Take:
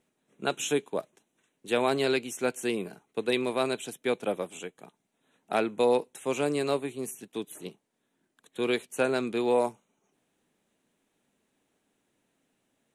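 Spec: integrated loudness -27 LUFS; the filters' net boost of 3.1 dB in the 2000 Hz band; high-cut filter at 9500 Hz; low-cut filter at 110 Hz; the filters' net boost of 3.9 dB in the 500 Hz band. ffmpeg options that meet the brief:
-af "highpass=110,lowpass=9.5k,equalizer=f=500:t=o:g=4.5,equalizer=f=2k:t=o:g=4,volume=-0.5dB"

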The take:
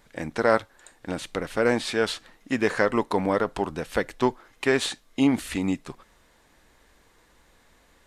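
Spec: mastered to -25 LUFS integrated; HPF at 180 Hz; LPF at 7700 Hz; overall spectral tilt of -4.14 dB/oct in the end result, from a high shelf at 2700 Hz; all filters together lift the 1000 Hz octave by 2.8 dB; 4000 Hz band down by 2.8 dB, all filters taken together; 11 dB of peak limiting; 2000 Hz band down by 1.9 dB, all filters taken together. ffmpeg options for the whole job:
-af "highpass=180,lowpass=7.7k,equalizer=f=1k:t=o:g=4.5,equalizer=f=2k:t=o:g=-5,highshelf=f=2.7k:g=4.5,equalizer=f=4k:t=o:g=-5.5,volume=5.5dB,alimiter=limit=-10.5dB:level=0:latency=1"

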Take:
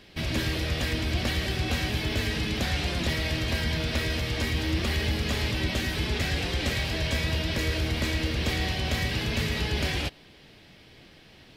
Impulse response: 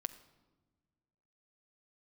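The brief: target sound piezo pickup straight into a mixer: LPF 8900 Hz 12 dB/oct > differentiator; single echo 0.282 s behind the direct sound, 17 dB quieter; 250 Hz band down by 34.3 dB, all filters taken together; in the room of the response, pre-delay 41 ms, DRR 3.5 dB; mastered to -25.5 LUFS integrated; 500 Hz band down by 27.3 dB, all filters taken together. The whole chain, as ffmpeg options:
-filter_complex "[0:a]equalizer=f=250:t=o:g=-6.5,equalizer=f=500:t=o:g=-4,aecho=1:1:282:0.141,asplit=2[a][b];[1:a]atrim=start_sample=2205,adelay=41[c];[b][c]afir=irnorm=-1:irlink=0,volume=-2dB[d];[a][d]amix=inputs=2:normalize=0,lowpass=8.9k,aderivative,volume=10.5dB"

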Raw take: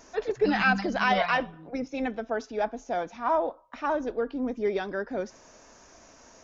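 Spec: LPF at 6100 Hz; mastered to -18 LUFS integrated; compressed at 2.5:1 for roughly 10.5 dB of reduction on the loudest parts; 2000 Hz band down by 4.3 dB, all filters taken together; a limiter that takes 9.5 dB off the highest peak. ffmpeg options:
-af "lowpass=6.1k,equalizer=f=2k:t=o:g=-6,acompressor=threshold=-36dB:ratio=2.5,volume=23.5dB,alimiter=limit=-9dB:level=0:latency=1"

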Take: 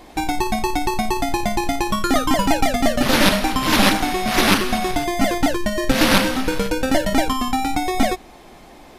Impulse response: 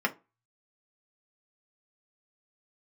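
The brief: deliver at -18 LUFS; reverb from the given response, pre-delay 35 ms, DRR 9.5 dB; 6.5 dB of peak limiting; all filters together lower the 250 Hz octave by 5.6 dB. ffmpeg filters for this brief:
-filter_complex "[0:a]equalizer=f=250:t=o:g=-7,alimiter=limit=-9dB:level=0:latency=1,asplit=2[a][b];[1:a]atrim=start_sample=2205,adelay=35[c];[b][c]afir=irnorm=-1:irlink=0,volume=-20dB[d];[a][d]amix=inputs=2:normalize=0,volume=4dB"

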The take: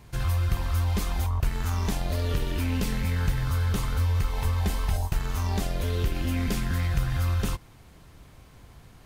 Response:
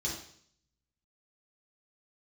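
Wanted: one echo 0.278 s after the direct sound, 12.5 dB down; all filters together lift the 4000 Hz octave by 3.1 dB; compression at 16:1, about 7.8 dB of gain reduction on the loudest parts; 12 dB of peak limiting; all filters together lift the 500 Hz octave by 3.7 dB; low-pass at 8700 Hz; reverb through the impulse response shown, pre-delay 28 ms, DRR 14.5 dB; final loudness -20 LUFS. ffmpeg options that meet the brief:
-filter_complex "[0:a]lowpass=8.7k,equalizer=f=500:t=o:g=4.5,equalizer=f=4k:t=o:g=4,acompressor=threshold=-27dB:ratio=16,alimiter=level_in=6.5dB:limit=-24dB:level=0:latency=1,volume=-6.5dB,aecho=1:1:278:0.237,asplit=2[a][b];[1:a]atrim=start_sample=2205,adelay=28[c];[b][c]afir=irnorm=-1:irlink=0,volume=-18dB[d];[a][d]amix=inputs=2:normalize=0,volume=18dB"

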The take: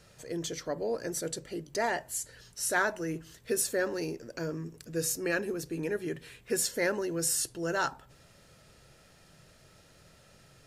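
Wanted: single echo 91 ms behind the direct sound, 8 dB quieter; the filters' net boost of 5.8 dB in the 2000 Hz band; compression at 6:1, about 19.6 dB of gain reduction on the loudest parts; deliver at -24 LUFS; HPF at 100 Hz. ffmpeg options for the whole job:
-af "highpass=100,equalizer=f=2k:t=o:g=7.5,acompressor=threshold=-42dB:ratio=6,aecho=1:1:91:0.398,volume=20dB"

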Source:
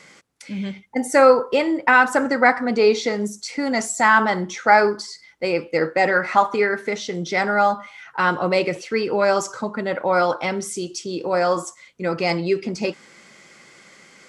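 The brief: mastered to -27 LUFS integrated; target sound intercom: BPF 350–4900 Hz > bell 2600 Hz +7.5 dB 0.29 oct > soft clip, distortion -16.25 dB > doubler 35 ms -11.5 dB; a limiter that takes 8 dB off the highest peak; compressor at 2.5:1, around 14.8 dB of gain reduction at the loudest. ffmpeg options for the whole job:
-filter_complex "[0:a]acompressor=threshold=-32dB:ratio=2.5,alimiter=limit=-22.5dB:level=0:latency=1,highpass=350,lowpass=4.9k,equalizer=f=2.6k:t=o:w=0.29:g=7.5,asoftclip=threshold=-27dB,asplit=2[a][b];[b]adelay=35,volume=-11.5dB[c];[a][c]amix=inputs=2:normalize=0,volume=9dB"

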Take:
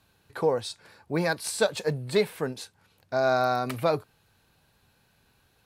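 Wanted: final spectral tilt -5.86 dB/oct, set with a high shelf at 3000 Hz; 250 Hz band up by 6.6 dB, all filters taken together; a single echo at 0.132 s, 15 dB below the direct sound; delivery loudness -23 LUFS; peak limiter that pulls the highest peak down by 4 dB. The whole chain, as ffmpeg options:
-af "equalizer=f=250:t=o:g=9,highshelf=f=3k:g=-8.5,alimiter=limit=-14dB:level=0:latency=1,aecho=1:1:132:0.178,volume=4.5dB"

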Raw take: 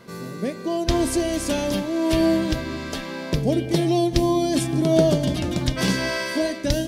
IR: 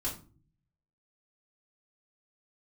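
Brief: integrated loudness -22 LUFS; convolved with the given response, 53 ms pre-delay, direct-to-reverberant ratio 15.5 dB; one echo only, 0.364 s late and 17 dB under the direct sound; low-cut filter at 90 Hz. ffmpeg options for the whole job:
-filter_complex "[0:a]highpass=90,aecho=1:1:364:0.141,asplit=2[a][b];[1:a]atrim=start_sample=2205,adelay=53[c];[b][c]afir=irnorm=-1:irlink=0,volume=-18dB[d];[a][d]amix=inputs=2:normalize=0"

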